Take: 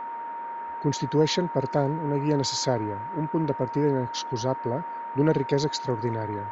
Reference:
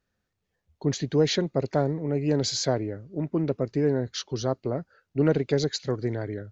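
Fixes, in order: band-stop 930 Hz, Q 30; noise print and reduce 30 dB

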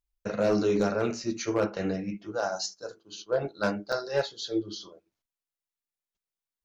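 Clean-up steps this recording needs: clip repair -17.5 dBFS; interpolate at 3.92 s, 5.1 ms

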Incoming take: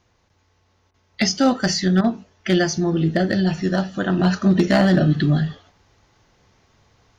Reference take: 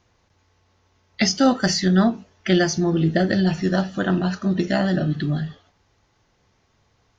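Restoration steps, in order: clip repair -8.5 dBFS; interpolate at 0.91/2.01 s, 29 ms; gain correction -5.5 dB, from 4.19 s

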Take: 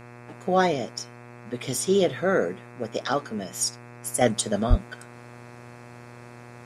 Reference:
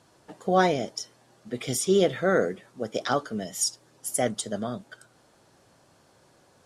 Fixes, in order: de-hum 120.5 Hz, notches 22; 4.69–4.81 s: high-pass 140 Hz 24 dB/octave; trim 0 dB, from 4.21 s -5.5 dB

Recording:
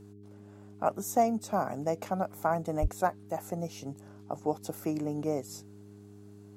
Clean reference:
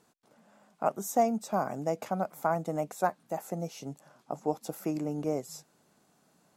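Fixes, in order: de-hum 102 Hz, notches 4; 2.81–2.93 s: high-pass 140 Hz 24 dB/octave

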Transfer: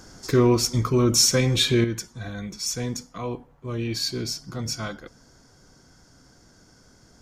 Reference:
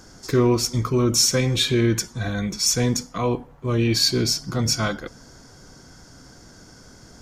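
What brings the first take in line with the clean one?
gain correction +8 dB, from 1.84 s

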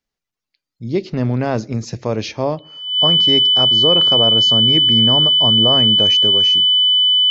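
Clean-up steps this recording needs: band-stop 3 kHz, Q 30

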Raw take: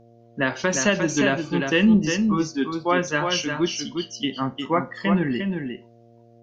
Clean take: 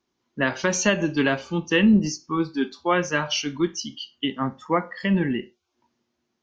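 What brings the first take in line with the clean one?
de-hum 116.7 Hz, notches 6; inverse comb 354 ms -5.5 dB

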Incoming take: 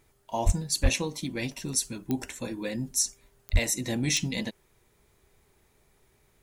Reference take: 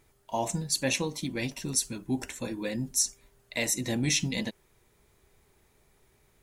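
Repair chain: clip repair -13.5 dBFS; de-click; de-plosive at 0.45/0.82/3.52 s

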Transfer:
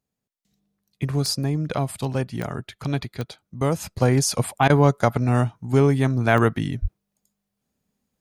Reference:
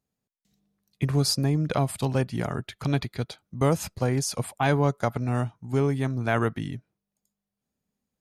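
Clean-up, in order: de-click; 6.81–6.93 s: high-pass 140 Hz 24 dB/octave; interpolate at 4.68 s, 17 ms; 3.96 s: gain correction -6.5 dB

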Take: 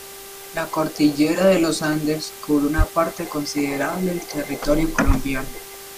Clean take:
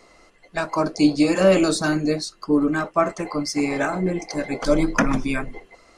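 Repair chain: de-hum 393.9 Hz, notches 12; 2.77–2.89 s: high-pass 140 Hz 24 dB/octave; 5.06–5.18 s: high-pass 140 Hz 24 dB/octave; noise reduction 15 dB, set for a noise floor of -38 dBFS

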